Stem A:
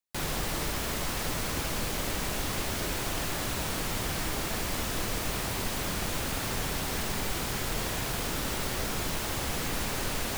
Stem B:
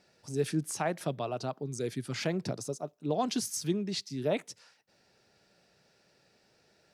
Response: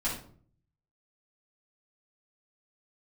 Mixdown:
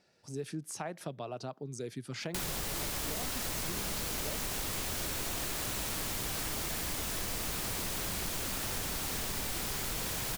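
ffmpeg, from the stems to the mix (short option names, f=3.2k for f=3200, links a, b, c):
-filter_complex "[0:a]highshelf=f=3.9k:g=7,adelay=2200,volume=3dB,asplit=2[a][b];[b]volume=-5dB[c];[1:a]volume=-3.5dB[d];[c]aecho=0:1:412:1[e];[a][d][e]amix=inputs=3:normalize=0,acompressor=threshold=-35dB:ratio=4"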